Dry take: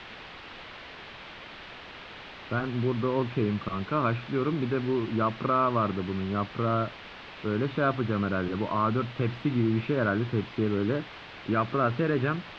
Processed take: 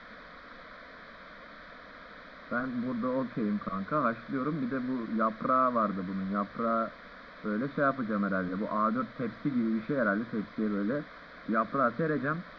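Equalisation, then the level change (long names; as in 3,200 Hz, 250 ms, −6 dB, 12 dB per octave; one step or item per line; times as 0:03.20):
low-pass filter 4,800 Hz 24 dB per octave
mains-hum notches 50/100 Hz
phaser with its sweep stopped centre 560 Hz, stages 8
0.0 dB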